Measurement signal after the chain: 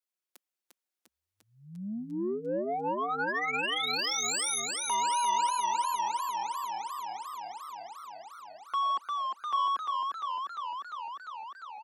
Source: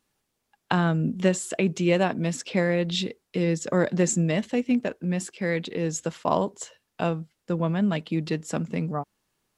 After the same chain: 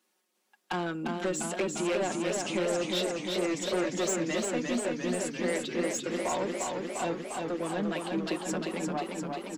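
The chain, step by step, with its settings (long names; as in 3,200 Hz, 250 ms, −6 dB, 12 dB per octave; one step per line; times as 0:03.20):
Butterworth high-pass 230 Hz 36 dB per octave
comb filter 5.5 ms, depth 83%
in parallel at −1.5 dB: downward compressor, threshold −33 dBFS
on the sum: soft clipping −19.5 dBFS
feedback echo with a swinging delay time 350 ms, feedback 75%, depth 81 cents, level −4 dB
level −6.5 dB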